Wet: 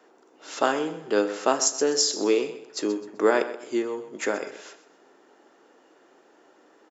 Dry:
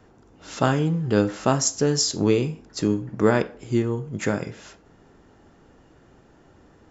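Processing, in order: high-pass 320 Hz 24 dB/octave; feedback delay 128 ms, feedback 33%, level -14 dB

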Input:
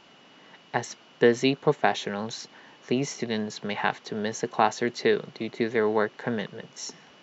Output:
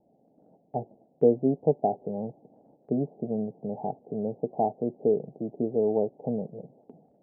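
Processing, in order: steep low-pass 770 Hz 72 dB/octave; gate -56 dBFS, range -6 dB; band-stop 370 Hz, Q 12

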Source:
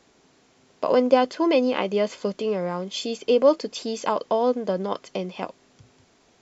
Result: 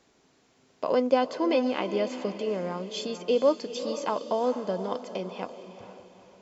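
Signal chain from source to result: echo that smears into a reverb 452 ms, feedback 41%, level -11 dB; trim -5 dB

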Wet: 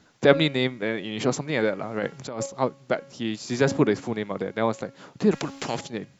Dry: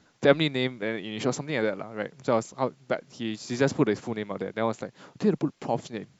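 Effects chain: de-hum 275.3 Hz, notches 11; 1.82–2.46 s: compressor with a negative ratio -32 dBFS, ratio -1; 5.31–5.81 s: spectrum-flattening compressor 2:1; trim +3 dB

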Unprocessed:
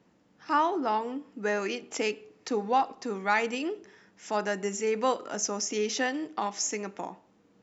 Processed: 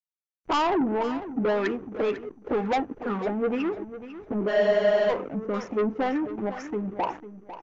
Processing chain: touch-sensitive flanger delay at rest 10.8 ms, full sweep at -25 dBFS; peaking EQ 5.6 kHz +12 dB 0.65 oct; in parallel at -2 dB: compression, threshold -35 dBFS, peak gain reduction 15.5 dB; on the sum: word length cut 8-bit, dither none; LFO low-pass sine 2 Hz 270–1700 Hz; hysteresis with a dead band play -43.5 dBFS; resonant high shelf 3.3 kHz -8 dB, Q 1.5; saturation -27 dBFS, distortion -7 dB; on a send: feedback delay 499 ms, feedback 22%, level -13.5 dB; on the sum: spectral freeze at 4.50 s, 0.60 s; trim +6.5 dB; MP2 96 kbps 24 kHz

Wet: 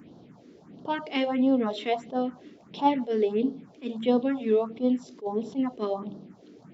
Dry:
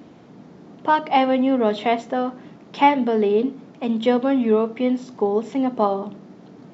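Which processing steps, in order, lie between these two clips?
phase shifter stages 4, 1.5 Hz, lowest notch 130–2200 Hz; attacks held to a fixed rise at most 320 dB/s; trim -3.5 dB

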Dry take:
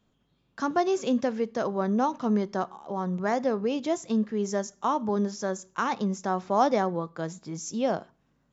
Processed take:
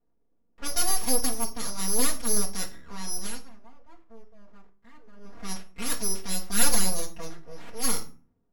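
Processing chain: single-diode clipper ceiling -23 dBFS; 1.21–1.81 s: distance through air 320 m; careless resampling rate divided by 8×, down none, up zero stuff; 3.20–5.41 s: dip -16.5 dB, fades 0.21 s; level-controlled noise filter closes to 580 Hz, open at -15 dBFS; 6.28–7.45 s: comb 5.7 ms, depth 65%; full-wave rectifier; reverberation RT60 0.40 s, pre-delay 4 ms, DRR -1.5 dB; trim -8 dB

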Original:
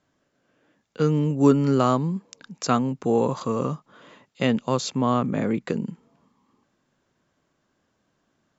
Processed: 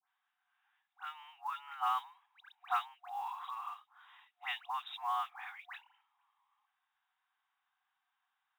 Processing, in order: phase dispersion highs, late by 89 ms, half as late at 1.9 kHz; FFT band-pass 720–3900 Hz; modulation noise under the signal 28 dB; trim -8 dB

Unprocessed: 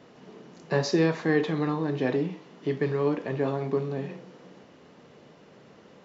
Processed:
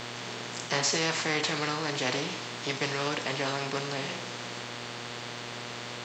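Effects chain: tilt shelf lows -6 dB, about 1.1 kHz; mains buzz 120 Hz, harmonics 36, -53 dBFS -4 dB/octave; formant shift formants +2 st; spectrum-flattening compressor 2:1

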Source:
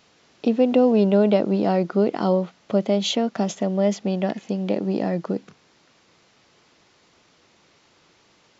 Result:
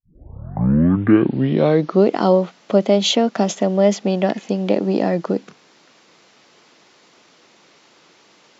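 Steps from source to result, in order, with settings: tape start-up on the opening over 2.08 s; high-pass 190 Hz 12 dB/octave; trim +6.5 dB

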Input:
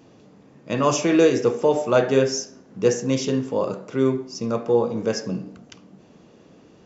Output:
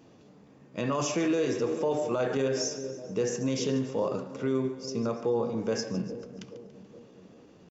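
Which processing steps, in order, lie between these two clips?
two-band feedback delay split 630 Hz, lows 371 ms, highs 128 ms, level -15 dB; peak limiter -15 dBFS, peak gain reduction 10 dB; tempo 0.89×; trim -4.5 dB

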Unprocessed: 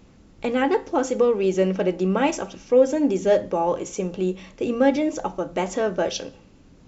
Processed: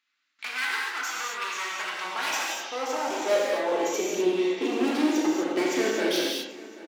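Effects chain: self-modulated delay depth 0.17 ms; hum notches 60/120/180 Hz; gate with hold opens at -40 dBFS; graphic EQ 125/250/500/1000/2000/4000 Hz -9/+9/-8/-5/+8/+10 dB; overload inside the chain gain 25 dB; gated-style reverb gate 280 ms flat, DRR -4 dB; high-pass sweep 1.3 kHz -> 350 Hz, 1.50–4.44 s; on a send: feedback delay 783 ms, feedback 53%, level -19.5 dB; on the sum: trim -4.5 dB

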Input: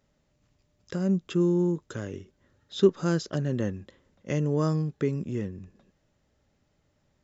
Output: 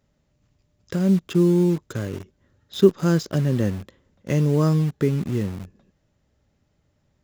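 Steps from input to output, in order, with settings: peaking EQ 82 Hz +5 dB 2.9 oct; in parallel at -5 dB: bit crusher 6-bit

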